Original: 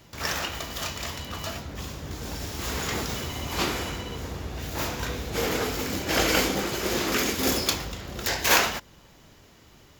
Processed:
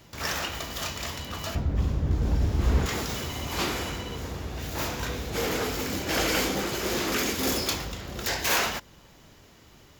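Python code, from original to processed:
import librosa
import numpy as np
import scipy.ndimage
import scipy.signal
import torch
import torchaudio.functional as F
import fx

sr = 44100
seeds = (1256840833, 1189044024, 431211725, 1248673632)

y = 10.0 ** (-19.5 / 20.0) * np.tanh(x / 10.0 ** (-19.5 / 20.0))
y = fx.tilt_eq(y, sr, slope=-3.5, at=(1.55, 2.86))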